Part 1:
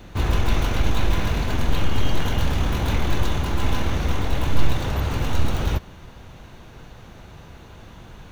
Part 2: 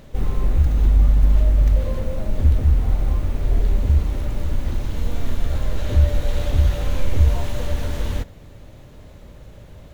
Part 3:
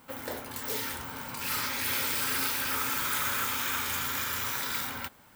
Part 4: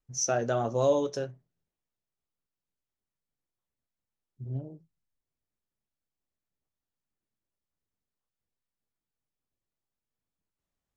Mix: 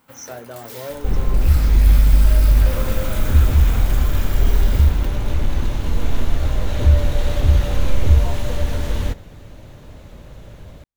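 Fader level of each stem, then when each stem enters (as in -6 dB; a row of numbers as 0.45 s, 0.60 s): -8.5 dB, +2.5 dB, -4.0 dB, -7.5 dB; 2.40 s, 0.90 s, 0.00 s, 0.00 s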